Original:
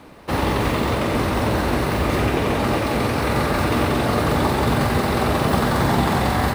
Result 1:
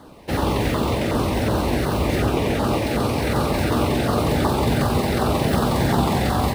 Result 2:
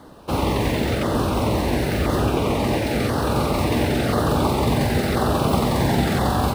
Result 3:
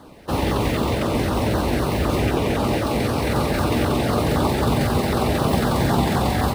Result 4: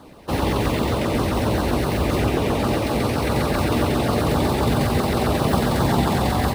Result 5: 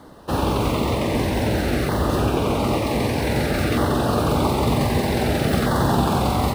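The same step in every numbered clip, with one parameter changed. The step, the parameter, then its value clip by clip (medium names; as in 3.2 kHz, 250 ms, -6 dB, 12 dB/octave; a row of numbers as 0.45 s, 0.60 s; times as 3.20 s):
LFO notch, rate: 2.7 Hz, 0.97 Hz, 3.9 Hz, 7.6 Hz, 0.53 Hz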